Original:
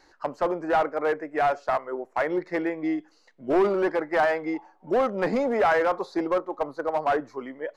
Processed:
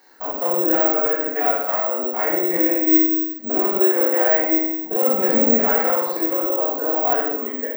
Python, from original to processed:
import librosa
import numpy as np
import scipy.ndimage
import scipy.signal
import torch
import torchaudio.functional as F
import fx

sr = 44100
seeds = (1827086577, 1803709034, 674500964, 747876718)

p1 = fx.spec_steps(x, sr, hold_ms=50)
p2 = scipy.signal.sosfilt(scipy.signal.butter(2, 240.0, 'highpass', fs=sr, output='sos'), p1)
p3 = fx.over_compress(p2, sr, threshold_db=-28.0, ratio=-1.0)
p4 = p2 + (p3 * 10.0 ** (2.5 / 20.0))
p5 = fx.quant_dither(p4, sr, seeds[0], bits=10, dither='none')
p6 = p5 + fx.room_flutter(p5, sr, wall_m=8.7, rt60_s=0.56, dry=0)
p7 = fx.room_shoebox(p6, sr, seeds[1], volume_m3=260.0, walls='mixed', distance_m=1.8)
p8 = (np.kron(scipy.signal.resample_poly(p7, 1, 2), np.eye(2)[0]) * 2)[:len(p7)]
y = p8 * 10.0 ** (-8.5 / 20.0)